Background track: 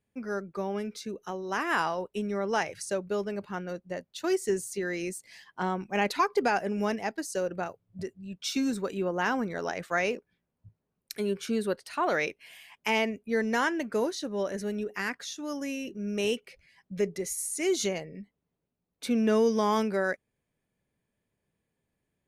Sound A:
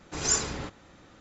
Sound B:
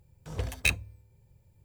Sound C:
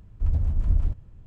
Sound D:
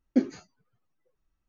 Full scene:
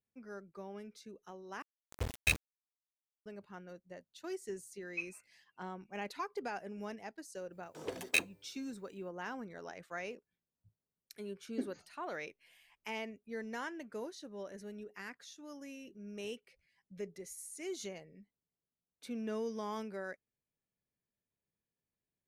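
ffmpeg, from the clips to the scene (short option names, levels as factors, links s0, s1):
-filter_complex "[2:a]asplit=2[s0][s1];[4:a]asplit=2[s2][s3];[0:a]volume=0.188[s4];[s0]aeval=exprs='val(0)*gte(abs(val(0)),0.0282)':c=same[s5];[s2]lowpass=f=2400:t=q:w=0.5098,lowpass=f=2400:t=q:w=0.6013,lowpass=f=2400:t=q:w=0.9,lowpass=f=2400:t=q:w=2.563,afreqshift=-2800[s6];[s1]highpass=f=330:t=q:w=2.3[s7];[s4]asplit=2[s8][s9];[s8]atrim=end=1.624[s10];[s5]atrim=end=1.64,asetpts=PTS-STARTPTS,volume=0.596[s11];[s9]atrim=start=3.256[s12];[s6]atrim=end=1.48,asetpts=PTS-STARTPTS,volume=0.126,afade=t=in:d=0.004:c=hsin,afade=t=out:st=1.476:d=0.004:c=hsin,adelay=212121S[s13];[s7]atrim=end=1.64,asetpts=PTS-STARTPTS,volume=0.596,afade=t=in:d=0.05,afade=t=out:st=1.59:d=0.05,adelay=7490[s14];[s3]atrim=end=1.48,asetpts=PTS-STARTPTS,volume=0.178,afade=t=in:d=0.004:c=hsin,afade=t=out:st=1.476:d=0.004:c=hsin,adelay=11420[s15];[s10][s11]acrossfade=d=0.004:c1=hsin:c2=hsin[s16];[s16][s12]acrossfade=d=0.004:c1=hsin:c2=hsin[s17];[s17][s13][s14][s15]amix=inputs=4:normalize=0"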